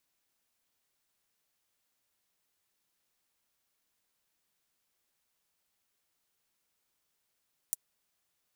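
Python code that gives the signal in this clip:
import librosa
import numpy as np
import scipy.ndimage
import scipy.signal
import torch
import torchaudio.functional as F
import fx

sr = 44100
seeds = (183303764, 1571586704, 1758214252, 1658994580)

y = fx.drum_hat(sr, length_s=0.24, from_hz=8000.0, decay_s=0.03)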